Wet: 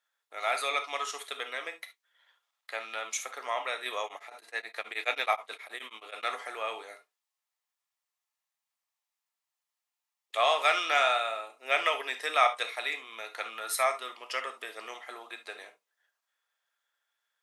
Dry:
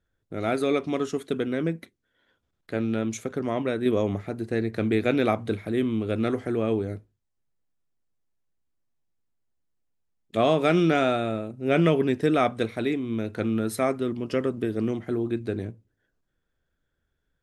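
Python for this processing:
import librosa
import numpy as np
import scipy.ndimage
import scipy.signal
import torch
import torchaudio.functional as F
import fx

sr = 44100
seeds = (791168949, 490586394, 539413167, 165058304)

y = scipy.signal.sosfilt(scipy.signal.butter(4, 830.0, 'highpass', fs=sr, output='sos'), x)
y = fx.notch(y, sr, hz=1500.0, q=7.7)
y = fx.rev_gated(y, sr, seeds[0], gate_ms=90, shape='flat', drr_db=7.5)
y = fx.tremolo_abs(y, sr, hz=9.4, at=(4.04, 6.23))
y = y * librosa.db_to_amplitude(4.0)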